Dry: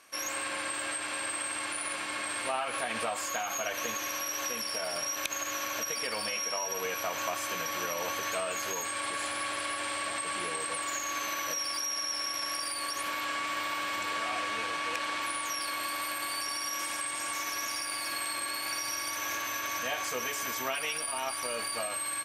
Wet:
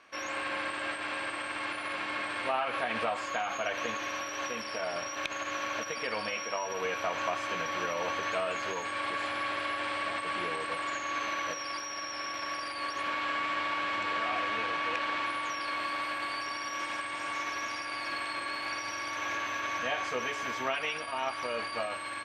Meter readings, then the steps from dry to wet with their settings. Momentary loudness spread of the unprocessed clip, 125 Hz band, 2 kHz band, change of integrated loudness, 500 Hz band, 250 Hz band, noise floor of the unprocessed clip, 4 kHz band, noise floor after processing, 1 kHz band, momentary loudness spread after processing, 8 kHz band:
1 LU, +2.0 dB, +1.5 dB, -1.0 dB, +2.0 dB, +2.0 dB, -36 dBFS, -3.5 dB, -39 dBFS, +2.0 dB, 4 LU, -12.0 dB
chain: LPF 3200 Hz 12 dB/oct; gain +2 dB

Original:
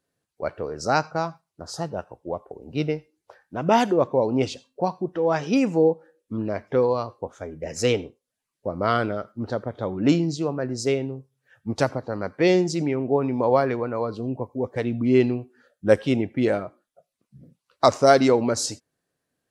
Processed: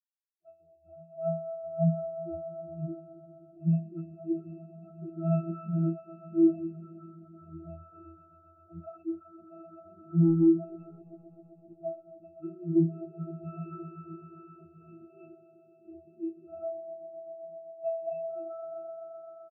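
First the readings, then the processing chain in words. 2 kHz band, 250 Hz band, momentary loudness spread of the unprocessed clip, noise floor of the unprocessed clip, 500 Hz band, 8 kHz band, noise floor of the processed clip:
under -35 dB, -6.0 dB, 14 LU, -84 dBFS, -14.0 dB, under -40 dB, -61 dBFS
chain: tracing distortion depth 0.19 ms; tilt +1.5 dB/oct; AGC gain up to 11.5 dB; in parallel at -8.5 dB: sine folder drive 18 dB, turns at 0 dBFS; on the sum: octave resonator E, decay 0.73 s; speakerphone echo 0.22 s, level -12 dB; hard clip -18 dBFS, distortion -14 dB; on a send: swelling echo 0.129 s, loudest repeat 5, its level -10 dB; on the sum: spectral expander 2.5:1

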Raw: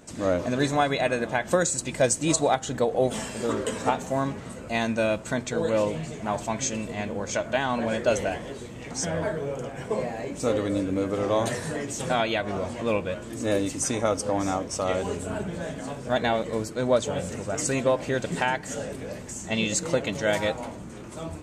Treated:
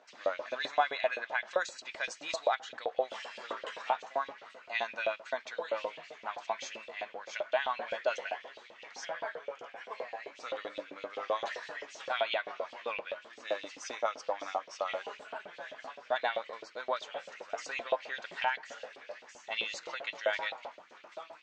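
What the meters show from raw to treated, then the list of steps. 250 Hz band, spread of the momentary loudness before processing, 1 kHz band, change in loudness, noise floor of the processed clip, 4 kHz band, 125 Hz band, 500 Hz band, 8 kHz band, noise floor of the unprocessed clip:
-27.0 dB, 9 LU, -6.0 dB, -9.5 dB, -57 dBFS, -6.5 dB, under -35 dB, -10.5 dB, -20.5 dB, -40 dBFS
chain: LFO high-pass saw up 7.7 Hz 530–3300 Hz; inverse Chebyshev low-pass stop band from 11000 Hz, stop band 50 dB; gain -8.5 dB

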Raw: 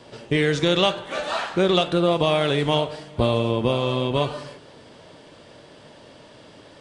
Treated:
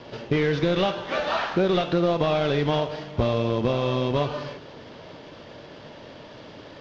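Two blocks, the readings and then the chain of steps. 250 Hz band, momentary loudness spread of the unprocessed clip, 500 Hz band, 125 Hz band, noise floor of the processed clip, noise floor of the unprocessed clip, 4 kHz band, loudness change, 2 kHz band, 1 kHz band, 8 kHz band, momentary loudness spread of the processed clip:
-1.5 dB, 8 LU, -2.0 dB, -1.0 dB, -44 dBFS, -48 dBFS, -6.5 dB, -2.5 dB, -3.0 dB, -2.0 dB, n/a, 21 LU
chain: CVSD 32 kbps; compressor 2:1, threshold -27 dBFS, peak gain reduction 6.5 dB; air absorption 120 m; gain +4.5 dB

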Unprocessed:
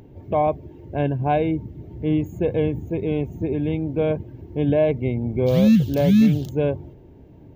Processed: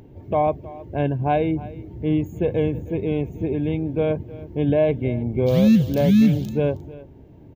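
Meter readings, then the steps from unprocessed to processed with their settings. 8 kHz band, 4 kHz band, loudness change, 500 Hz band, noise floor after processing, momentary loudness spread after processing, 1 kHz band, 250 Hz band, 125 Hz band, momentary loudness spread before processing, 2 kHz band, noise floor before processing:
n/a, 0.0 dB, 0.0 dB, 0.0 dB, -45 dBFS, 13 LU, 0.0 dB, 0.0 dB, 0.0 dB, 13 LU, 0.0 dB, -46 dBFS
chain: echo 0.315 s -18.5 dB

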